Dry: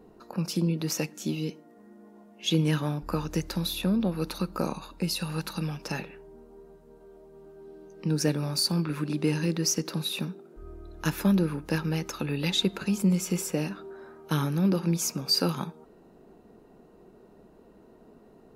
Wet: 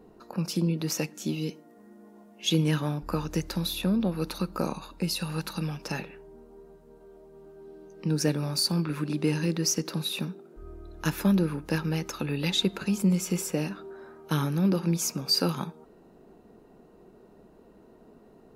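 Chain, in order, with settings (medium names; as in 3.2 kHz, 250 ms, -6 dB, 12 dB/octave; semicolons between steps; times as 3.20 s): 1.41–2.64 s: treble shelf 5.8 kHz +5 dB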